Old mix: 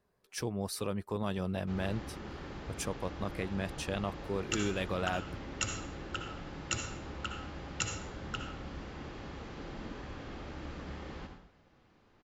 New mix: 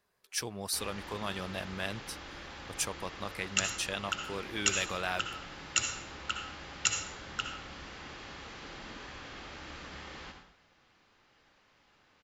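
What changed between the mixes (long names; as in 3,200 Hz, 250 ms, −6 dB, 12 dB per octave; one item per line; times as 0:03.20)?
background: entry −0.95 s
master: add tilt shelving filter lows −7.5 dB, about 860 Hz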